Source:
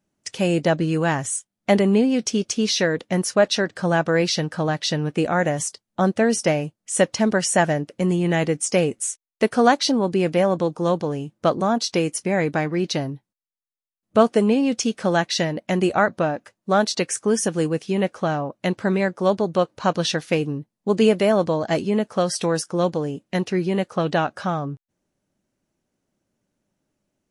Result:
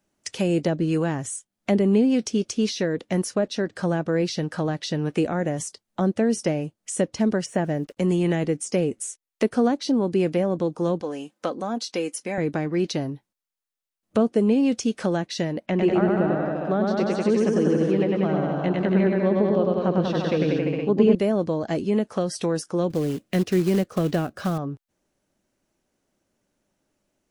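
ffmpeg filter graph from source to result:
-filter_complex "[0:a]asettb=1/sr,asplit=3[a][b][c];[a]atrim=end=7.464[d];[b]atrim=start=7.46:end=7.97,asetpts=PTS-STARTPTS,afade=t=in:d=0.004:c=qsin,afade=t=out:st=0.506:d=0.004:c=qsin,acrossover=split=3400[e][f];[f]acompressor=threshold=-39dB:ratio=4:attack=1:release=60[g];[e][g]amix=inputs=2:normalize=0,acrusher=bits=8:mix=0:aa=0.5[h];[c]atrim=start=7.966[i];[d][h]acrossfade=d=0.004:c1=hsin:c2=qsin[j];[j][i]acrossfade=d=0.004:c1=qsin:c2=hsin,asettb=1/sr,asplit=3[k][l][m];[k]atrim=end=11.014[n];[l]atrim=start=11.01:end=12.38,asetpts=PTS-STARTPTS,afade=t=in:d=0.004:c=qsin,afade=t=out:st=1.366:d=0.004:c=qsin,highpass=f=520:p=1,aecho=1:1:3.9:0.4,atrim=end_sample=60417[o];[m]atrim=start=12.376[p];[n][o]acrossfade=d=0.004:c1=hsin:c2=qsin[q];[q][p]acrossfade=d=0.004:c1=qsin:c2=hsin,asettb=1/sr,asplit=3[r][s][t];[r]atrim=end=15.664[u];[s]atrim=start=15.66:end=21.15,asetpts=PTS-STARTPTS,afade=t=in:d=0.004:c=qsin,afade=t=out:st=5.486:d=0.004:c=qsin,lowpass=3.3k,aecho=1:1:100|190|271|343.9|409.5|468.6:0.794|0.631|0.501|0.398|0.316|0.251,atrim=end_sample=242109[v];[t]atrim=start=21.146[w];[u][v]acrossfade=d=0.004:c1=hsin:c2=qsin[x];[x][w]acrossfade=d=0.004:c1=qsin:c2=hsin,asettb=1/sr,asplit=3[y][z][aa];[y]atrim=end=22.904[ab];[z]atrim=start=22.9:end=24.58,asetpts=PTS-STARTPTS,afade=t=in:d=0.004:c=qsin,afade=t=out:st=1.676:d=0.004:c=qsin,lowshelf=f=230:g=5.5,bandreject=f=890:w=5.7,acrusher=bits=4:mode=log:mix=0:aa=0.000001[ac];[aa]atrim=start=24.576[ad];[ab][ac]acrossfade=d=0.004:c1=hsin:c2=qsin[ae];[ae][ad]acrossfade=d=0.004:c1=qsin:c2=hsin,equalizer=f=140:w=0.75:g=-6.5,acrossover=split=400[af][ag];[ag]acompressor=threshold=-35dB:ratio=5[ah];[af][ah]amix=inputs=2:normalize=0,volume=4dB"

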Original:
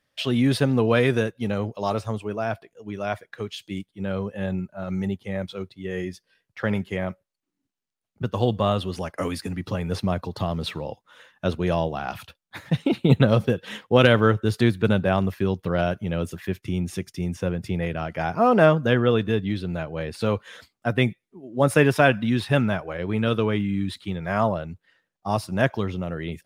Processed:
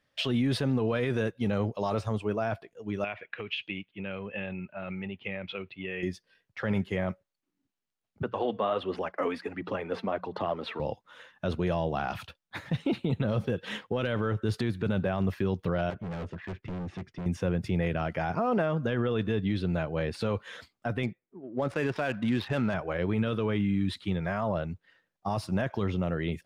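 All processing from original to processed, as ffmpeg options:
-filter_complex "[0:a]asettb=1/sr,asplit=3[a][b][c];[a]atrim=end=3.044[d];[b]atrim=start=3.04:end=6.03,asetpts=PTS-STARTPTS,afade=t=in:d=0.004:c=qsin,afade=t=out:st=2.986:d=0.004:c=qsin,lowshelf=f=120:g=-7.5,acompressor=threshold=-33dB:ratio=10:attack=3.2:release=140:knee=1:detection=peak,lowpass=f=2.6k:t=q:w=5.9[e];[c]atrim=start=6.026[f];[d][e]acrossfade=d=0.004:c1=hsin:c2=qsin[g];[g][f]acrossfade=d=0.004:c1=qsin:c2=hsin,asettb=1/sr,asplit=3[h][i][j];[h]atrim=end=8.234[k];[i]atrim=start=8.23:end=10.8,asetpts=PTS-STARTPTS,afade=t=in:d=0.004:c=qsin,afade=t=out:st=2.566:d=0.004:c=qsin,bandreject=f=60:t=h:w=6,bandreject=f=120:t=h:w=6,bandreject=f=180:t=h:w=6,aphaser=in_gain=1:out_gain=1:delay=4.5:decay=0.42:speed=1.4:type=sinusoidal,acrossover=split=270 3100:gain=0.0891 1 0.126[l][m][n];[l][m][n]amix=inputs=3:normalize=0[o];[j]atrim=start=10.796[p];[k][o]acrossfade=d=0.004:c1=hsin:c2=qsin[q];[q][p]acrossfade=d=0.004:c1=qsin:c2=hsin,asettb=1/sr,asplit=3[r][s][t];[r]atrim=end=15.904[u];[s]atrim=start=15.9:end=17.26,asetpts=PTS-STARTPTS,afade=t=in:d=0.004:c=qsin,afade=t=out:st=1.356:d=0.004:c=qsin,lowpass=2.2k,volume=33.5dB,asoftclip=hard,volume=-33.5dB[v];[t]atrim=start=17.256[w];[u][v]acrossfade=d=0.004:c1=hsin:c2=qsin[x];[x][w]acrossfade=d=0.004:c1=qsin:c2=hsin,asettb=1/sr,asplit=3[y][z][aa];[y]atrim=end=21.034[ab];[z]atrim=start=21.03:end=22.74,asetpts=PTS-STARTPTS,afade=t=in:d=0.004:c=qsin,afade=t=out:st=1.706:d=0.004:c=qsin,lowshelf=f=160:g=-8,adynamicsmooth=sensitivity=5.5:basefreq=1.6k[ac];[aa]atrim=start=22.736[ad];[ab][ac]acrossfade=d=0.004:c1=hsin:c2=qsin[ae];[ae][ad]acrossfade=d=0.004:c1=qsin:c2=hsin,highshelf=f=7.9k:g=-11,acompressor=threshold=-20dB:ratio=4,alimiter=limit=-19.5dB:level=0:latency=1:release=13"

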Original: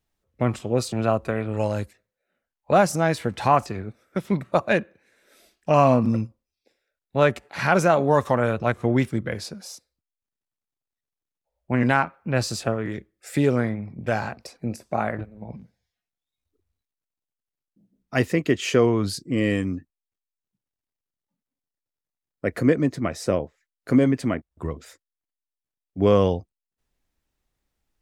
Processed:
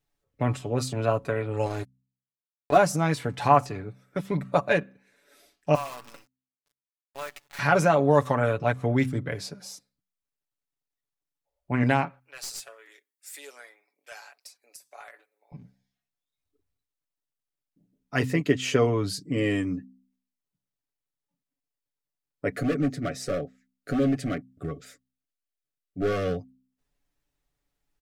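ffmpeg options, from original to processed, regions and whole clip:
-filter_complex "[0:a]asettb=1/sr,asplit=3[a][b][c];[a]atrim=end=1.664[d];[b]atrim=start=1.66:end=2.77,asetpts=PTS-STARTPTS,afade=t=in:d=0.004:c=qsin,afade=t=out:st=1.106:d=0.004:c=qsin,bandreject=f=2.9k:w=12,aecho=1:1:2.8:0.65,atrim=end_sample=48951,aeval=exprs='sgn(val(0))*max(abs(val(0))-0.0178,0)':c=same[e];[c]atrim=start=2.766[f];[d][e]acrossfade=d=0.004:c1=hsin:c2=qsin[g];[g][f]acrossfade=d=0.004:c1=qsin:c2=hsin,asettb=1/sr,asplit=3[h][i][j];[h]atrim=end=5.754[k];[i]atrim=start=5.75:end=7.59,asetpts=PTS-STARTPTS,afade=t=in:d=0.004:c=qsin,afade=t=out:st=1.836:d=0.004:c=qsin,highpass=1k,acompressor=threshold=-38dB:ratio=2:attack=3.2:release=140:knee=1:detection=peak,acrusher=bits=7:dc=4:mix=0:aa=0.000001[l];[j]atrim=start=7.586[m];[k][l]acrossfade=d=0.004:c1=hsin:c2=qsin[n];[n][m]acrossfade=d=0.004:c1=qsin:c2=hsin,asettb=1/sr,asplit=3[o][p][q];[o]atrim=end=12.194[r];[p]atrim=start=12.19:end=15.52,asetpts=PTS-STARTPTS,afade=t=in:d=0.004:c=qsin,afade=t=out:st=3.326:d=0.004:c=qsin,highpass=f=370:w=0.5412,highpass=f=370:w=1.3066,aderivative,aeval=exprs='clip(val(0),-1,0.0211)':c=same[s];[q]atrim=start=15.516[t];[r][s]acrossfade=d=0.004:c1=hsin:c2=qsin[u];[u][t]acrossfade=d=0.004:c1=qsin:c2=hsin,asettb=1/sr,asplit=3[v][w][x];[v]atrim=end=22.524[y];[w]atrim=start=22.52:end=26.38,asetpts=PTS-STARTPTS,afade=t=in:d=0.004:c=qsin,afade=t=out:st=3.856:d=0.004:c=qsin,asoftclip=type=hard:threshold=-19.5dB,asuperstop=centerf=940:order=20:qfactor=3[z];[x]atrim=start=26.376[aa];[y][z]acrossfade=d=0.004:c1=hsin:c2=qsin[ab];[ab][aa]acrossfade=d=0.004:c1=qsin:c2=hsin,aecho=1:1:7:0.62,bandreject=f=64.38:t=h:w=4,bandreject=f=128.76:t=h:w=4,bandreject=f=193.14:t=h:w=4,bandreject=f=257.52:t=h:w=4,volume=-3.5dB"

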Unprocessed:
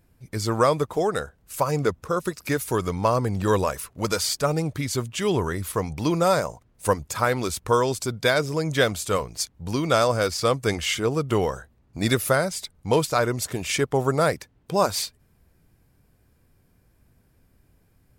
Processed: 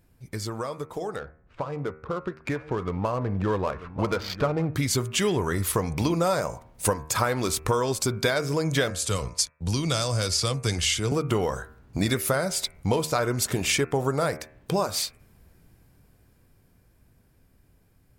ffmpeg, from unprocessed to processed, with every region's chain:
-filter_complex "[0:a]asettb=1/sr,asplit=3[a][b][c];[a]atrim=end=1.164[d];[b]atrim=start=1.16:end=4.76,asetpts=PTS-STARTPTS,afade=t=in:d=0.004:c=qsin,afade=t=out:st=3.596:d=0.004:c=qsin,lowpass=3.3k,adynamicsmooth=sensitivity=5:basefreq=1.4k,aecho=1:1:940:0.0891,atrim=end_sample=158760[e];[c]atrim=start=4.756[f];[d][e]acrossfade=d=0.004:c1=hsin:c2=qsin[g];[g][f]acrossfade=d=0.004:c1=qsin:c2=hsin,asettb=1/sr,asplit=3[h][i][j];[h]atrim=end=8.904[k];[i]atrim=start=8.9:end=11.12,asetpts=PTS-STARTPTS,afade=t=in:d=0.004:c=qsin,afade=t=out:st=2.216:d=0.004:c=qsin,agate=range=-33dB:threshold=-35dB:ratio=3:release=100:detection=peak,lowpass=f=11k:w=0.5412,lowpass=f=11k:w=1.3066,acrossover=split=150|3000[l][m][n];[m]acompressor=threshold=-54dB:ratio=1.5:attack=3.2:release=140:knee=2.83:detection=peak[o];[l][o][n]amix=inputs=3:normalize=0[p];[j]atrim=start=11.116[q];[k][p]acrossfade=d=0.004:c1=hsin:c2=qsin[r];[r][q]acrossfade=d=0.004:c1=qsin:c2=hsin,acompressor=threshold=-29dB:ratio=6,bandreject=f=77.35:t=h:w=4,bandreject=f=154.7:t=h:w=4,bandreject=f=232.05:t=h:w=4,bandreject=f=309.4:t=h:w=4,bandreject=f=386.75:t=h:w=4,bandreject=f=464.1:t=h:w=4,bandreject=f=541.45:t=h:w=4,bandreject=f=618.8:t=h:w=4,bandreject=f=696.15:t=h:w=4,bandreject=f=773.5:t=h:w=4,bandreject=f=850.85:t=h:w=4,bandreject=f=928.2:t=h:w=4,bandreject=f=1.00555k:t=h:w=4,bandreject=f=1.0829k:t=h:w=4,bandreject=f=1.16025k:t=h:w=4,bandreject=f=1.2376k:t=h:w=4,bandreject=f=1.31495k:t=h:w=4,bandreject=f=1.3923k:t=h:w=4,bandreject=f=1.46965k:t=h:w=4,bandreject=f=1.547k:t=h:w=4,bandreject=f=1.62435k:t=h:w=4,bandreject=f=1.7017k:t=h:w=4,bandreject=f=1.77905k:t=h:w=4,bandreject=f=1.8564k:t=h:w=4,bandreject=f=1.93375k:t=h:w=4,bandreject=f=2.0111k:t=h:w=4,bandreject=f=2.08845k:t=h:w=4,bandreject=f=2.1658k:t=h:w=4,bandreject=f=2.24315k:t=h:w=4,bandreject=f=2.3205k:t=h:w=4,bandreject=f=2.39785k:t=h:w=4,bandreject=f=2.4752k:t=h:w=4,bandreject=f=2.55255k:t=h:w=4,bandreject=f=2.6299k:t=h:w=4,dynaudnorm=f=350:g=17:m=8dB"

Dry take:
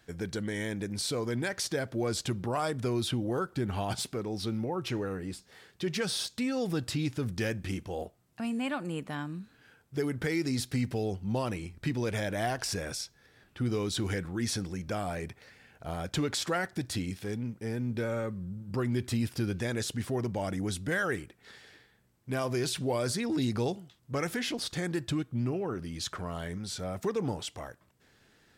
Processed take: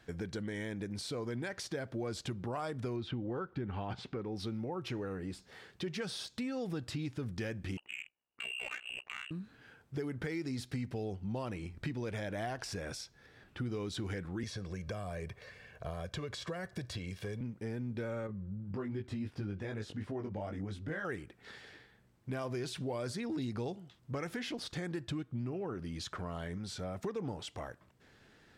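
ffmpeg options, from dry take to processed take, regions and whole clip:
-filter_complex "[0:a]asettb=1/sr,asplit=3[a][b][c];[a]atrim=end=2.964[d];[b]atrim=start=2.96:end=4.36,asetpts=PTS-STARTPTS,afade=t=in:d=0.004:c=qsin,afade=t=out:st=1.396:d=0.004:c=qsin,lowpass=3.1k,bandreject=f=650:w=8.2[e];[c]atrim=start=4.356[f];[d][e]acrossfade=d=0.004:c1=hsin:c2=qsin[g];[g][f]acrossfade=d=0.004:c1=qsin:c2=hsin,asettb=1/sr,asplit=3[h][i][j];[h]atrim=end=7.774[k];[i]atrim=start=7.77:end=9.31,asetpts=PTS-STARTPTS,afade=t=in:d=0.004:c=qsin,afade=t=out:st=1.536:d=0.004:c=qsin,lowpass=f=2.6k:t=q:w=0.5098,lowpass=f=2.6k:t=q:w=0.6013,lowpass=f=2.6k:t=q:w=0.9,lowpass=f=2.6k:t=q:w=2.563,afreqshift=-3000,aeval=exprs='val(0)*sin(2*PI*31*n/s)':c=same,adynamicsmooth=sensitivity=7.5:basefreq=700[l];[j]atrim=start=9.306[m];[k][l]acrossfade=d=0.004:c1=hsin:c2=qsin[n];[n][m]acrossfade=d=0.004:c1=qsin:c2=hsin,asettb=1/sr,asplit=3[o][p][q];[o]atrim=end=14.434[r];[p]atrim=start=14.43:end=17.41,asetpts=PTS-STARTPTS,afade=t=in:d=0.004:c=qsin,afade=t=out:st=2.976:d=0.004:c=qsin,aecho=1:1:1.8:0.59,atrim=end_sample=131418,acrossover=split=290|5900[s][t][u];[s]acompressor=threshold=-36dB:ratio=4[v];[t]acompressor=threshold=-37dB:ratio=4[w];[u]acompressor=threshold=-48dB:ratio=4[x];[v][w][x]amix=inputs=3:normalize=0[y];[q]atrim=start=17.406[z];[r][y]acrossfade=d=0.004:c1=hsin:c2=qsin[aa];[aa][z]acrossfade=d=0.004:c1=qsin:c2=hsin,asettb=1/sr,asplit=3[ab][ac][ad];[ab]atrim=end=18.274[ae];[ac]atrim=start=18.27:end=21.05,asetpts=PTS-STARTPTS,afade=t=in:d=0.004:c=qsin,afade=t=out:st=2.776:d=0.004:c=qsin,lowpass=f=2.5k:p=1,flanger=delay=18.5:depth=2.1:speed=2.7[af];[ad]atrim=start=21.046[ag];[ae][af]acrossfade=d=0.004:c1=hsin:c2=qsin[ah];[ah][ag]acrossfade=d=0.004:c1=qsin:c2=hsin,acompressor=threshold=-41dB:ratio=2.5,lowpass=f=3.9k:p=1,volume=2dB"

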